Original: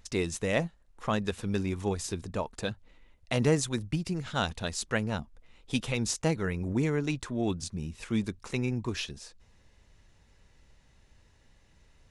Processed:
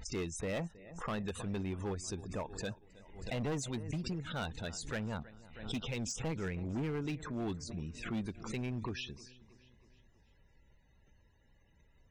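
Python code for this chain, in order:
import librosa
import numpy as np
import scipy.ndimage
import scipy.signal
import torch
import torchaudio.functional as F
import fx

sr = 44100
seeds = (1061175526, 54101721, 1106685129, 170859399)

y = fx.diode_clip(x, sr, knee_db=-13.5)
y = fx.spec_topn(y, sr, count=64)
y = fx.echo_feedback(y, sr, ms=319, feedback_pct=55, wet_db=-21.5)
y = np.clip(10.0 ** (27.0 / 20.0) * y, -1.0, 1.0) / 10.0 ** (27.0 / 20.0)
y = fx.pre_swell(y, sr, db_per_s=80.0)
y = y * 10.0 ** (-5.5 / 20.0)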